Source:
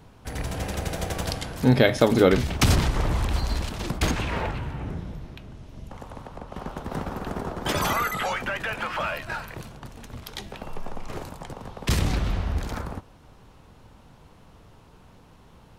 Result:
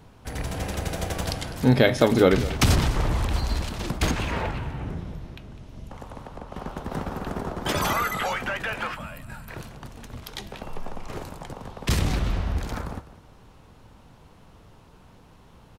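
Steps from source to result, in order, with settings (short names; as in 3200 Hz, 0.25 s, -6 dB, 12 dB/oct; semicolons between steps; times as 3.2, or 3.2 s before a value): echo 0.203 s -16 dB; spectral gain 8.94–9.48, 290–7000 Hz -12 dB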